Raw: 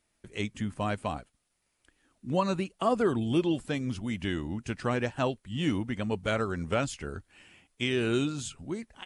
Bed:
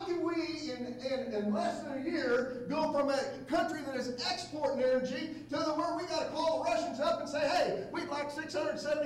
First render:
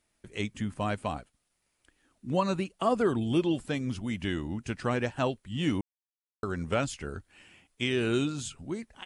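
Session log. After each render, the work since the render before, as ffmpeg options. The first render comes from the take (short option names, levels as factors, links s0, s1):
-filter_complex "[0:a]asplit=3[s0][s1][s2];[s0]atrim=end=5.81,asetpts=PTS-STARTPTS,afade=t=out:st=5.806:d=0.004:c=hsin[s3];[s1]atrim=start=5.81:end=6.43,asetpts=PTS-STARTPTS,volume=0[s4];[s2]atrim=start=6.43,asetpts=PTS-STARTPTS,afade=t=in:d=0.004:c=hsin[s5];[s3][s4][s5]concat=n=3:v=0:a=1"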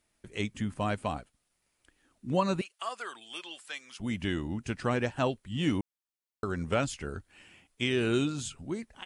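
-filter_complex "[0:a]asettb=1/sr,asplit=3[s0][s1][s2];[s0]atrim=end=2.614[s3];[s1]atrim=start=2.61:end=4,asetpts=PTS-STARTPTS,afade=t=in:d=0.004:c=qsin,afade=t=out:st=1.386:d=0.004:c=qsin,highpass=1400[s4];[s2]atrim=start=3.996[s5];[s3][s4]acrossfade=d=0.004:c1=hsin:c2=qsin[s6];[s6][s5]acrossfade=d=0.004:c1=qsin:c2=hsin"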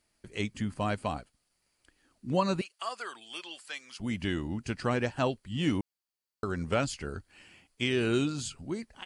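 -af "equalizer=f=4600:w=6.6:g=8.5,bandreject=f=3600:w=25"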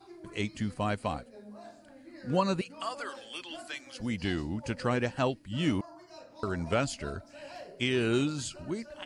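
-filter_complex "[1:a]volume=0.168[s0];[0:a][s0]amix=inputs=2:normalize=0"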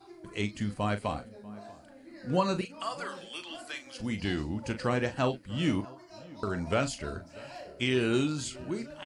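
-filter_complex "[0:a]asplit=2[s0][s1];[s1]adelay=39,volume=0.316[s2];[s0][s2]amix=inputs=2:normalize=0,asplit=2[s3][s4];[s4]adelay=641.4,volume=0.0891,highshelf=f=4000:g=-14.4[s5];[s3][s5]amix=inputs=2:normalize=0"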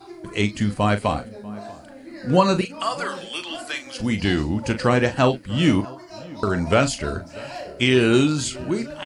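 -af "volume=3.35"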